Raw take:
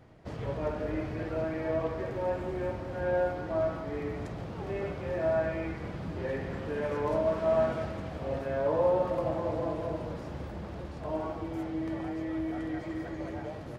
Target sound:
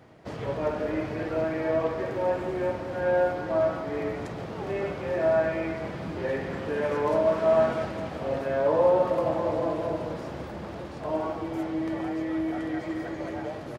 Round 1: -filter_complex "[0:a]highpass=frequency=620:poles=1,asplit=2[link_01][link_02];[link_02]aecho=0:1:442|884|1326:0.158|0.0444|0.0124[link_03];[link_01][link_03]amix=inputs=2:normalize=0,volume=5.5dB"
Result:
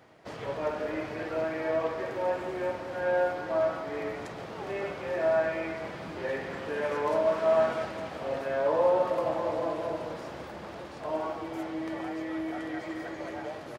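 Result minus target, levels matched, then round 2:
250 Hz band −2.5 dB
-filter_complex "[0:a]highpass=frequency=190:poles=1,asplit=2[link_01][link_02];[link_02]aecho=0:1:442|884|1326:0.158|0.0444|0.0124[link_03];[link_01][link_03]amix=inputs=2:normalize=0,volume=5.5dB"

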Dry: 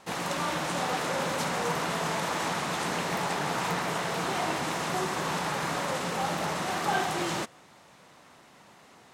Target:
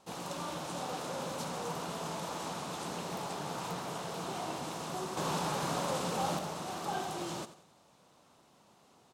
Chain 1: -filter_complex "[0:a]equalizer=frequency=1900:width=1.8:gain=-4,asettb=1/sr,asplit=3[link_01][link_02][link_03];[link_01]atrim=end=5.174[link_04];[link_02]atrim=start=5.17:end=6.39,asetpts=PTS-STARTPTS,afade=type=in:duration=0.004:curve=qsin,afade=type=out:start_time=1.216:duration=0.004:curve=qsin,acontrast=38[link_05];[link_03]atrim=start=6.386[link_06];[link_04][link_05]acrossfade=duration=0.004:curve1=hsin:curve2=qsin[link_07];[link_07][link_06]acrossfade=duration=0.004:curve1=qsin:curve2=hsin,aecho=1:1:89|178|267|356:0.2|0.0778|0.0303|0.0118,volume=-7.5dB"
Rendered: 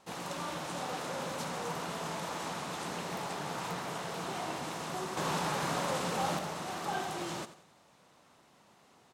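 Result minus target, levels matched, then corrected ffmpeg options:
2,000 Hz band +3.5 dB
-filter_complex "[0:a]equalizer=frequency=1900:width=1.8:gain=-10.5,asettb=1/sr,asplit=3[link_01][link_02][link_03];[link_01]atrim=end=5.174[link_04];[link_02]atrim=start=5.17:end=6.39,asetpts=PTS-STARTPTS,afade=type=in:duration=0.004:curve=qsin,afade=type=out:start_time=1.216:duration=0.004:curve=qsin,acontrast=38[link_05];[link_03]atrim=start=6.386[link_06];[link_04][link_05]acrossfade=duration=0.004:curve1=hsin:curve2=qsin[link_07];[link_07][link_06]acrossfade=duration=0.004:curve1=qsin:curve2=hsin,aecho=1:1:89|178|267|356:0.2|0.0778|0.0303|0.0118,volume=-7.5dB"

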